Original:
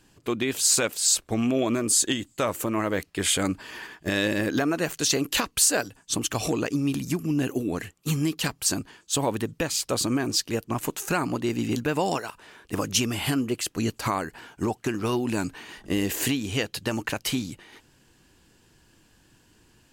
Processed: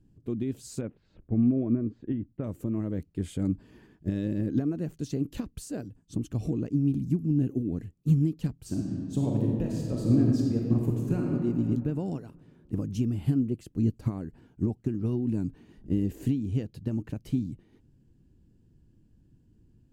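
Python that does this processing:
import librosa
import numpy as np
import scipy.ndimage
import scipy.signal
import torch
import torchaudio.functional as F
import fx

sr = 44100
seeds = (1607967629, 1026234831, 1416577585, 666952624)

y = fx.lowpass(x, sr, hz=2200.0, slope=24, at=(0.81, 2.44))
y = fx.reverb_throw(y, sr, start_s=8.54, length_s=2.77, rt60_s=2.4, drr_db=-2.0)
y = fx.curve_eq(y, sr, hz=(120.0, 240.0, 1000.0, 2100.0), db=(0, -3, -26, -28))
y = fx.upward_expand(y, sr, threshold_db=-31.0, expansion=1.5)
y = y * 10.0 ** (6.5 / 20.0)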